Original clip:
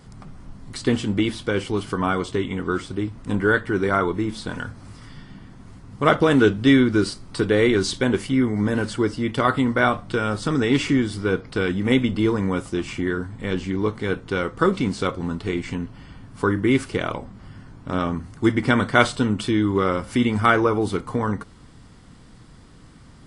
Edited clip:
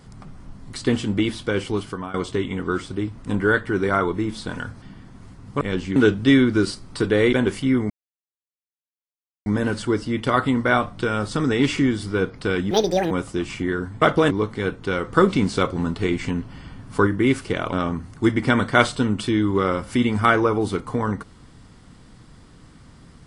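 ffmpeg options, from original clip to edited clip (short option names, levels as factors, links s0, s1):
-filter_complex "[0:a]asplit=14[s0][s1][s2][s3][s4][s5][s6][s7][s8][s9][s10][s11][s12][s13];[s0]atrim=end=2.14,asetpts=PTS-STARTPTS,afade=t=out:st=1.75:d=0.39:silence=0.141254[s14];[s1]atrim=start=2.14:end=4.822,asetpts=PTS-STARTPTS,afade=t=in:d=0.004:c=hsin:silence=0.141254[s15];[s2]atrim=start=5.268:end=6.062[s16];[s3]atrim=start=13.398:end=13.752[s17];[s4]atrim=start=6.348:end=7.722[s18];[s5]atrim=start=7.998:end=8.57,asetpts=PTS-STARTPTS,afade=t=out:st=0.568:d=0.004:c=hsin,apad=pad_dur=1.56[s19];[s6]atrim=start=8.57:end=11.824,asetpts=PTS-STARTPTS,afade=t=in:d=0.004:c=hsin[s20];[s7]atrim=start=11.82:end=12.49,asetpts=PTS-STARTPTS,asetrate=74529,aresample=44100,atrim=end_sample=17483,asetpts=PTS-STARTPTS[s21];[s8]atrim=start=12.486:end=13.402[s22];[s9]atrim=start=6.058:end=6.352[s23];[s10]atrim=start=13.748:end=14.492[s24];[s11]atrim=start=14.488:end=16.512,asetpts=PTS-STARTPTS,volume=1.41[s25];[s12]atrim=start=16.508:end=17.172[s26];[s13]atrim=start=17.928[s27];[s14][s15]concat=n=2:v=0:a=1[s28];[s28][s16]acrossfade=d=0.004:c1=hsin:c2=hsin[s29];[s29][s17]acrossfade=d=0.004:c1=hsin:c2=hsin[s30];[s30][s18]acrossfade=d=0.004:c1=hsin:c2=hsin[s31];[s19][s20]concat=n=2:v=0:a=1[s32];[s31][s32]acrossfade=d=0.004:c1=hsin:c2=hsin[s33];[s33][s21]acrossfade=d=0.004:c1=hsin:c2=hsin[s34];[s34][s22]acrossfade=d=0.004:c1=hsin:c2=hsin[s35];[s35][s23]acrossfade=d=0.004:c1=hsin:c2=hsin[s36];[s36][s24]acrossfade=d=0.004:c1=hsin:c2=hsin[s37];[s37][s25]acrossfade=d=0.004:c1=hsin:c2=hsin[s38];[s38][s26]acrossfade=d=0.004:c1=hsin:c2=hsin[s39];[s39][s27]acrossfade=d=0.004:c1=hsin:c2=hsin"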